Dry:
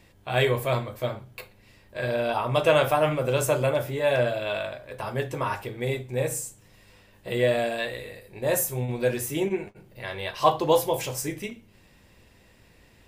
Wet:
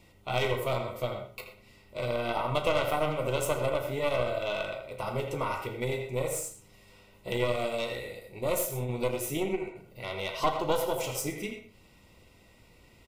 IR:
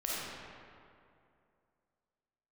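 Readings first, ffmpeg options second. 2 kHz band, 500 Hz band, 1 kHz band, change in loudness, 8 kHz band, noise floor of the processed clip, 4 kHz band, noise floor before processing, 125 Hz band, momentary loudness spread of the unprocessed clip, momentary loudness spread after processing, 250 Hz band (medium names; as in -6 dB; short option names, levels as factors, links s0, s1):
-5.5 dB, -5.5 dB, -4.5 dB, -5.5 dB, -4.5 dB, -59 dBFS, -3.5 dB, -57 dBFS, -5.5 dB, 14 LU, 11 LU, -4.5 dB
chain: -filter_complex "[0:a]asplit=2[s0][s1];[s1]adelay=80,highpass=300,lowpass=3400,asoftclip=type=hard:threshold=0.158,volume=0.447[s2];[s0][s2]amix=inputs=2:normalize=0,aeval=exprs='0.473*(cos(1*acos(clip(val(0)/0.473,-1,1)))-cos(1*PI/2))+0.188*(cos(2*acos(clip(val(0)/0.473,-1,1)))-cos(2*PI/2))+0.0841*(cos(3*acos(clip(val(0)/0.473,-1,1)))-cos(3*PI/2))':c=same,asoftclip=type=tanh:threshold=0.299,asuperstop=centerf=1700:order=20:qfactor=5.3,asplit=2[s3][s4];[1:a]atrim=start_sample=2205,atrim=end_sample=4410,adelay=35[s5];[s4][s5]afir=irnorm=-1:irlink=0,volume=0.251[s6];[s3][s6]amix=inputs=2:normalize=0,acompressor=threshold=0.0224:ratio=2,volume=1.68"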